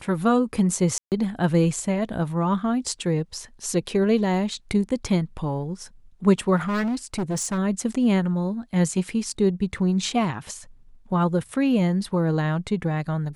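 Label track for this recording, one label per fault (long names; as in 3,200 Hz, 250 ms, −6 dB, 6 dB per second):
0.980000	1.120000	drop-out 138 ms
6.560000	7.590000	clipping −22 dBFS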